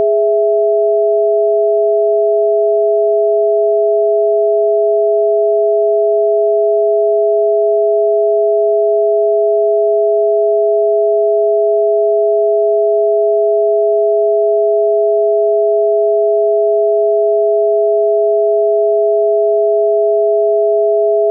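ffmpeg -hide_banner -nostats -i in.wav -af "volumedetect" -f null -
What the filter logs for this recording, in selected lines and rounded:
mean_volume: -11.6 dB
max_volume: -5.6 dB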